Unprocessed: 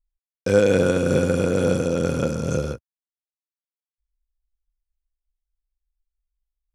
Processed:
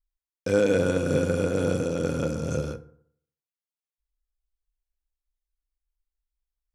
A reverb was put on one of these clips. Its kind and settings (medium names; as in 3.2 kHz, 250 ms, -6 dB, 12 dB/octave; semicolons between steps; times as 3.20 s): FDN reverb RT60 0.63 s, low-frequency decay 1×, high-frequency decay 0.5×, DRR 10 dB; trim -5 dB